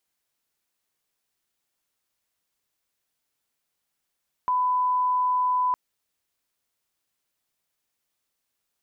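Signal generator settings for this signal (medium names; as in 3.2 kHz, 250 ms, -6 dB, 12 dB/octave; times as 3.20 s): line-up tone -20 dBFS 1.26 s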